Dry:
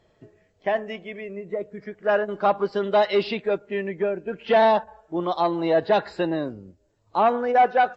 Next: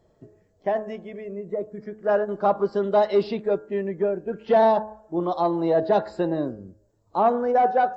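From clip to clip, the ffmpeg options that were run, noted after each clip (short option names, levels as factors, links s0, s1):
-af "equalizer=f=2600:t=o:w=1.7:g=-13.5,bandreject=f=107.4:t=h:w=4,bandreject=f=214.8:t=h:w=4,bandreject=f=322.2:t=h:w=4,bandreject=f=429.6:t=h:w=4,bandreject=f=537:t=h:w=4,bandreject=f=644.4:t=h:w=4,bandreject=f=751.8:t=h:w=4,bandreject=f=859.2:t=h:w=4,bandreject=f=966.6:t=h:w=4,bandreject=f=1074:t=h:w=4,bandreject=f=1181.4:t=h:w=4,bandreject=f=1288.8:t=h:w=4,bandreject=f=1396.2:t=h:w=4,bandreject=f=1503.6:t=h:w=4,bandreject=f=1611:t=h:w=4,bandreject=f=1718.4:t=h:w=4,volume=1.26"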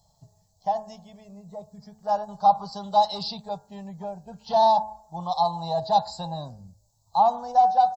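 -af "firequalizer=gain_entry='entry(160,0);entry(330,-29);entry(810,7);entry(1400,-15);entry(2100,-18);entry(4100,13)':delay=0.05:min_phase=1"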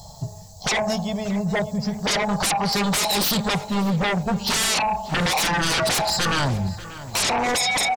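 -filter_complex "[0:a]acompressor=threshold=0.0282:ratio=2,aeval=exprs='0.119*sin(PI/2*8.91*val(0)/0.119)':c=same,asplit=2[s0][s1];[s1]adelay=589,lowpass=f=3500:p=1,volume=0.178,asplit=2[s2][s3];[s3]adelay=589,lowpass=f=3500:p=1,volume=0.36,asplit=2[s4][s5];[s5]adelay=589,lowpass=f=3500:p=1,volume=0.36[s6];[s0][s2][s4][s6]amix=inputs=4:normalize=0"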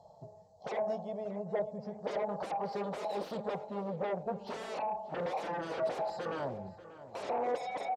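-af "bandpass=f=520:t=q:w=2.2:csg=0,volume=0.562"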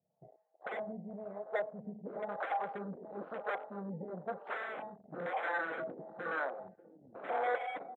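-filter_complex "[0:a]acrossover=split=410[s0][s1];[s0]aeval=exprs='val(0)*(1-1/2+1/2*cos(2*PI*1*n/s))':c=same[s2];[s1]aeval=exprs='val(0)*(1-1/2-1/2*cos(2*PI*1*n/s))':c=same[s3];[s2][s3]amix=inputs=2:normalize=0,highpass=230,equalizer=f=410:t=q:w=4:g=-6,equalizer=f=590:t=q:w=4:g=-5,equalizer=f=930:t=q:w=4:g=-8,equalizer=f=1500:t=q:w=4:g=8,equalizer=f=2100:t=q:w=4:g=3,lowpass=f=2400:w=0.5412,lowpass=f=2400:w=1.3066,afwtdn=0.00224,volume=2"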